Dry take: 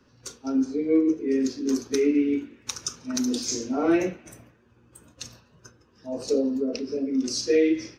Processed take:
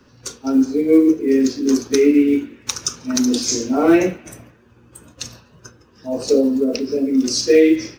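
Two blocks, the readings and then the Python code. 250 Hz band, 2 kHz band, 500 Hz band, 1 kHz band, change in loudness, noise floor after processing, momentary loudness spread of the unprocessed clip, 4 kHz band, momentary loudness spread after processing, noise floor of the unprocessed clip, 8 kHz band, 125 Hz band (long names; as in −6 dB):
+8.5 dB, +8.5 dB, +8.5 dB, +8.5 dB, +8.5 dB, −52 dBFS, 17 LU, +8.5 dB, 17 LU, −60 dBFS, +8.5 dB, +8.5 dB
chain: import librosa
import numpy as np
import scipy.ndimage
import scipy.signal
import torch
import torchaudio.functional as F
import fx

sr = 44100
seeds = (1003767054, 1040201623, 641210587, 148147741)

y = fx.block_float(x, sr, bits=7)
y = y * librosa.db_to_amplitude(8.5)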